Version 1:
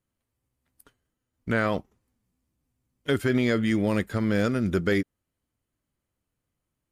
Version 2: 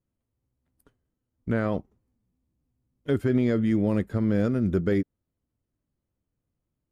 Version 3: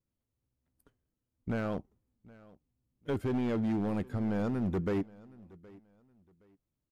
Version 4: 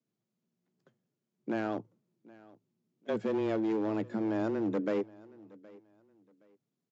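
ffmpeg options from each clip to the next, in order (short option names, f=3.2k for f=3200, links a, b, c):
-af "tiltshelf=f=970:g=7,volume=-5dB"
-af "volume=22dB,asoftclip=hard,volume=-22dB,aecho=1:1:769|1538:0.075|0.0202,volume=-5dB"
-af "aresample=16000,aresample=44100,afreqshift=110"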